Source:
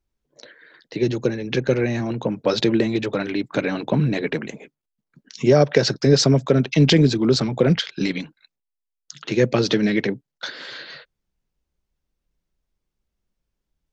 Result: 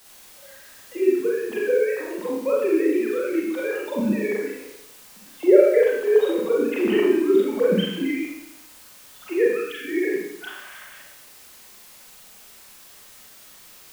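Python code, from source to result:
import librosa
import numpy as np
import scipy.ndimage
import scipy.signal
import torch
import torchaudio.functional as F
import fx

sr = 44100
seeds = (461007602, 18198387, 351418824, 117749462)

p1 = fx.sine_speech(x, sr)
p2 = fx.quant_dither(p1, sr, seeds[0], bits=6, dither='triangular')
p3 = p1 + (p2 * librosa.db_to_amplitude(-7.0))
p4 = fx.brickwall_bandstop(p3, sr, low_hz=290.0, high_hz=1200.0, at=(9.48, 9.88))
p5 = fx.rev_schroeder(p4, sr, rt60_s=0.81, comb_ms=30, drr_db=-4.5)
y = p5 * librosa.db_to_amplitude(-10.0)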